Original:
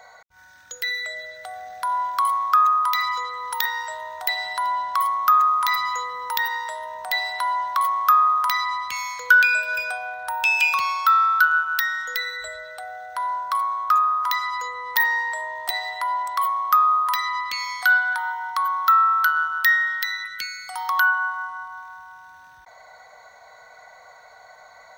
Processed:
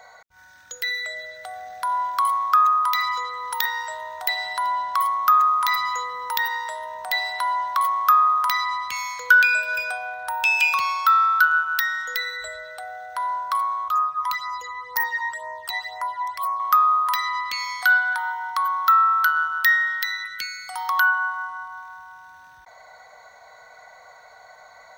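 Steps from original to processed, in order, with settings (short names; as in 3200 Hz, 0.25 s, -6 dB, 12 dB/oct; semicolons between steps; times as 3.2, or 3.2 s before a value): 13.88–16.6 phaser stages 12, 2 Hz, lowest notch 450–3600 Hz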